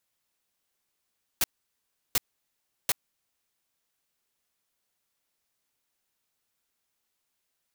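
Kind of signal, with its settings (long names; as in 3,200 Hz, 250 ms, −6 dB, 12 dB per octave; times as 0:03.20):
noise bursts white, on 0.03 s, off 0.71 s, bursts 3, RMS −23.5 dBFS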